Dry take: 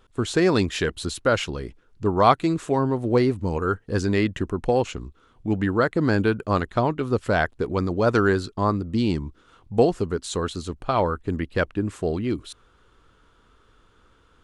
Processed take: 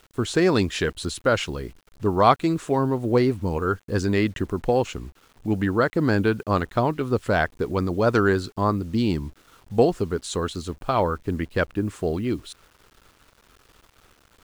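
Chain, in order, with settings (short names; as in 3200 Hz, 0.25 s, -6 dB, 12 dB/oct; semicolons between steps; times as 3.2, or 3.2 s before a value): bit-crush 9-bit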